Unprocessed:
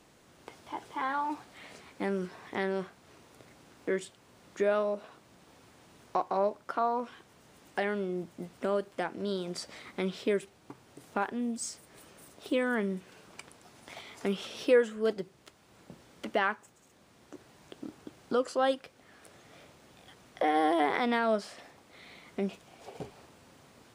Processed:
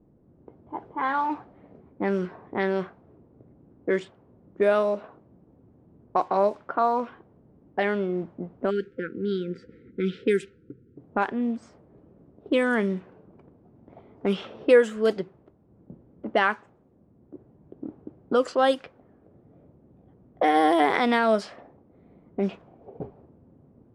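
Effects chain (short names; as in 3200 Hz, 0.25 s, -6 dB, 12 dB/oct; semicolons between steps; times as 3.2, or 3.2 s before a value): spectral delete 8.7–10.97, 520–1300 Hz; low-pass opened by the level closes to 300 Hz, open at -24 dBFS; gain +6.5 dB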